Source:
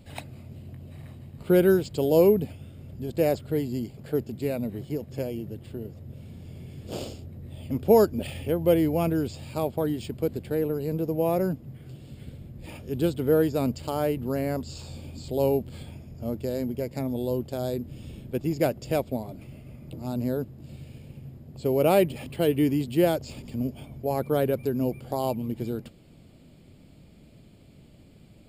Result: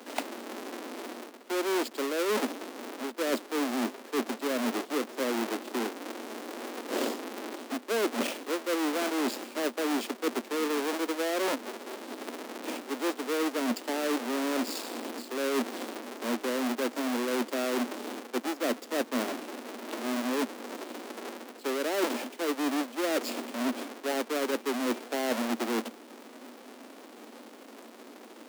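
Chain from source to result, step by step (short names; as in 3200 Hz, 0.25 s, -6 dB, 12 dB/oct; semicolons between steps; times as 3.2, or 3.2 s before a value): half-waves squared off; steep high-pass 230 Hz 96 dB/oct; reverse; compressor 16:1, threshold -31 dBFS, peak gain reduction 21 dB; reverse; gain +5 dB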